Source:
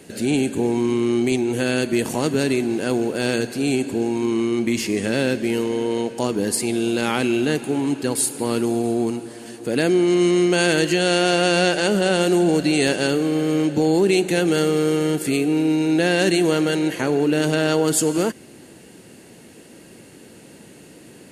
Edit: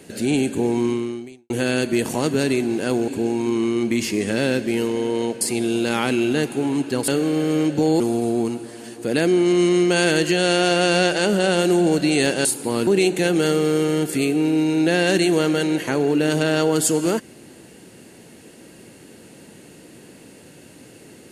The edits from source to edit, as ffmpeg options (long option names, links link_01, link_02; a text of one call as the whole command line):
ffmpeg -i in.wav -filter_complex "[0:a]asplit=8[link_01][link_02][link_03][link_04][link_05][link_06][link_07][link_08];[link_01]atrim=end=1.5,asetpts=PTS-STARTPTS,afade=type=out:start_time=0.87:duration=0.63:curve=qua[link_09];[link_02]atrim=start=1.5:end=3.082,asetpts=PTS-STARTPTS,afade=type=in:duration=0.004:curve=hsin[link_10];[link_03]atrim=start=3.838:end=6.172[link_11];[link_04]atrim=start=6.528:end=8.202[link_12];[link_05]atrim=start=13.068:end=13.992[link_13];[link_06]atrim=start=8.618:end=13.072[link_14];[link_07]atrim=start=8.198:end=8.622[link_15];[link_08]atrim=start=13.988[link_16];[link_09][link_10]concat=n=2:v=0:a=1[link_17];[link_17][link_11]acrossfade=duration=0.004:curve1=hsin:curve2=hsin[link_18];[link_18][link_12]acrossfade=duration=0.004:curve1=hsin:curve2=hsin[link_19];[link_19][link_13]acrossfade=duration=0.004:curve1=hsin:curve2=hsin[link_20];[link_20][link_14]acrossfade=duration=0.004:curve1=hsin:curve2=hsin[link_21];[link_21][link_15]acrossfade=duration=0.004:curve1=hsin:curve2=hsin[link_22];[link_22][link_16]acrossfade=duration=0.004:curve1=hsin:curve2=hsin" out.wav